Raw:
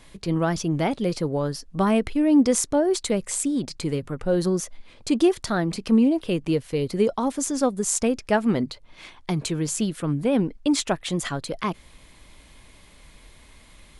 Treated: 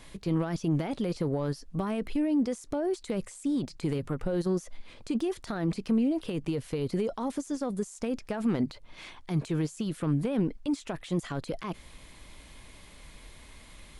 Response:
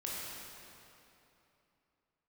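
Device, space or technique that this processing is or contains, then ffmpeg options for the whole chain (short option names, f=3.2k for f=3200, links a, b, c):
de-esser from a sidechain: -filter_complex "[0:a]asplit=2[a][b];[b]highpass=f=5.9k:p=1,apad=whole_len=617125[c];[a][c]sidechaincompress=threshold=-49dB:ratio=6:attack=2.8:release=21"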